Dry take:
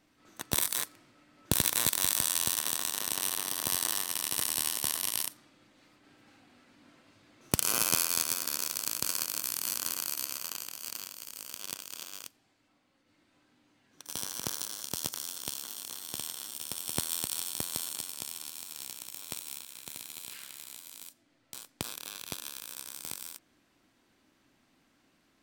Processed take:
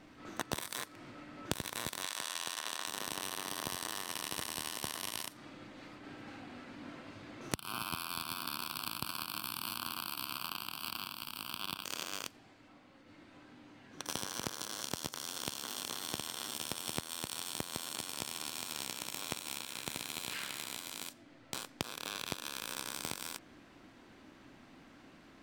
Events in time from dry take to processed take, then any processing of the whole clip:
0:02.03–0:02.87: meter weighting curve A
0:07.54–0:11.85: phaser with its sweep stopped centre 1,900 Hz, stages 6
whole clip: low-pass filter 2,400 Hz 6 dB per octave; downward compressor 12 to 1, threshold −46 dBFS; level +12.5 dB

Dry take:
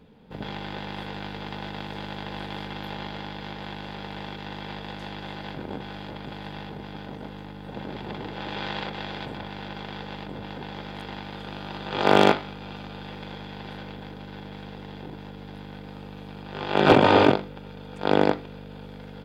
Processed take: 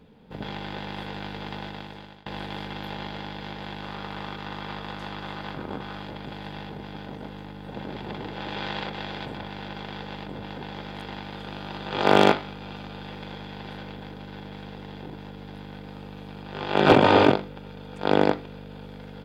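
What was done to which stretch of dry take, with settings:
0:01.57–0:02.26: fade out, to −22.5 dB
0:03.82–0:06.04: parametric band 1,200 Hz +8 dB 0.47 octaves

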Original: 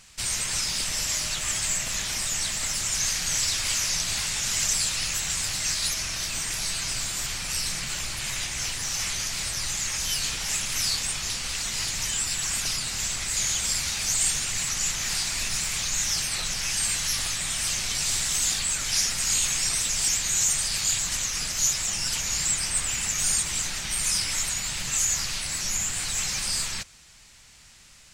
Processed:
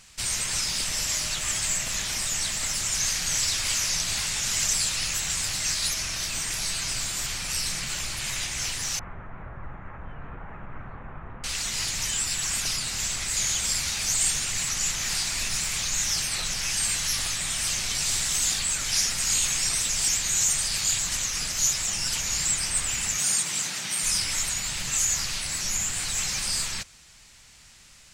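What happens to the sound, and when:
0:08.99–0:11.44: inverse Chebyshev low-pass filter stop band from 4,500 Hz, stop band 60 dB
0:23.18–0:24.04: high-pass filter 130 Hz 24 dB per octave

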